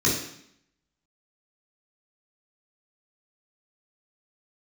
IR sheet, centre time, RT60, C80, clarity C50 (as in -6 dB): 44 ms, 0.70 s, 8.0 dB, 4.0 dB